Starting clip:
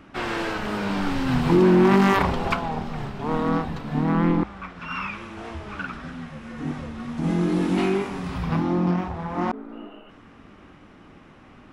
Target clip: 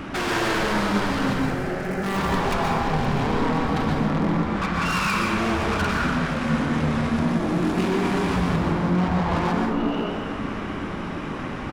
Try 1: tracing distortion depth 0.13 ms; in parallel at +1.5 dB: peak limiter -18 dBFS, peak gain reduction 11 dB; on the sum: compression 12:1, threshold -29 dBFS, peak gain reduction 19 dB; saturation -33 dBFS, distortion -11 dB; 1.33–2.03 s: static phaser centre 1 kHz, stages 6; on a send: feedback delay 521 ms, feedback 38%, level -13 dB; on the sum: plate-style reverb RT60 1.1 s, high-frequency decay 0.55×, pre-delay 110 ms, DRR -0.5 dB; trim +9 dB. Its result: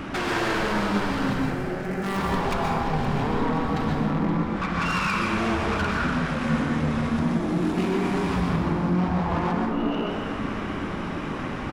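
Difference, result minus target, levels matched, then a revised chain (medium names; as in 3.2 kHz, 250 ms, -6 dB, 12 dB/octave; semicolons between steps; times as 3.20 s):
compression: peak gain reduction +6 dB
tracing distortion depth 0.13 ms; in parallel at +1.5 dB: peak limiter -18 dBFS, peak gain reduction 11 dB; on the sum: compression 12:1, threshold -22.5 dBFS, peak gain reduction 13.5 dB; saturation -33 dBFS, distortion -7 dB; 1.33–2.03 s: static phaser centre 1 kHz, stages 6; on a send: feedback delay 521 ms, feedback 38%, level -13 dB; on the sum: plate-style reverb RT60 1.1 s, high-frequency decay 0.55×, pre-delay 110 ms, DRR -0.5 dB; trim +9 dB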